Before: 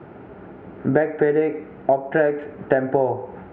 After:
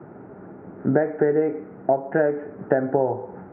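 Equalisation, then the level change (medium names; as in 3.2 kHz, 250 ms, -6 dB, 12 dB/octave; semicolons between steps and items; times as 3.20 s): high-pass 140 Hz 12 dB/octave; low-pass 1.8 kHz 24 dB/octave; bass shelf 230 Hz +7 dB; -3.0 dB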